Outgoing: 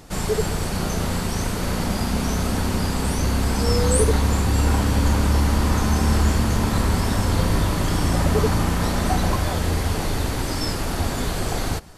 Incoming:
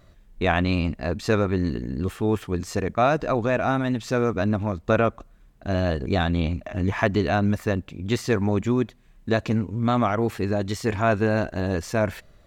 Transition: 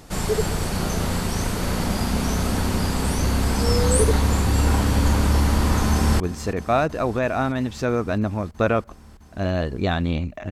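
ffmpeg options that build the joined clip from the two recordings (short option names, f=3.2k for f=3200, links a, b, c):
-filter_complex "[0:a]apad=whole_dur=10.51,atrim=end=10.51,atrim=end=6.202[a];[1:a]atrim=start=2.488:end=6.8[b];[a][b]acrossfade=d=0.004:c1=hsin:c2=hsin,asplit=2[c][d];[d]afade=t=in:st=5.9:d=0.01,afade=t=out:st=6.2:d=0.01,aecho=0:1:330|660|990|1320|1650|1980|2310|2640|2970|3300|3630|3960:0.141254|0.120066|0.102056|0.0867475|0.0737353|0.062675|0.0532738|0.0452827|0.0384903|0.0327168|0.0278092|0.0236379[e];[c][e]amix=inputs=2:normalize=0"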